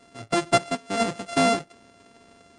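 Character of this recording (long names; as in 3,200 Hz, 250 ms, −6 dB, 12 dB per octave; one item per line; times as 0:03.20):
a buzz of ramps at a fixed pitch in blocks of 64 samples
MP3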